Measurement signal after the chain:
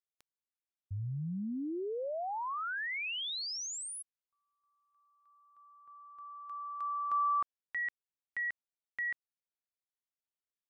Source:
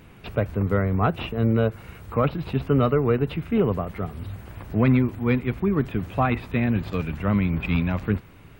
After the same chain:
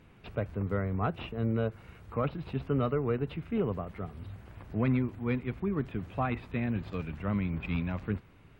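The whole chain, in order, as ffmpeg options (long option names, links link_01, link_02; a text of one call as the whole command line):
ffmpeg -i in.wav -af "highshelf=frequency=9600:gain=-11.5,volume=-9dB" out.wav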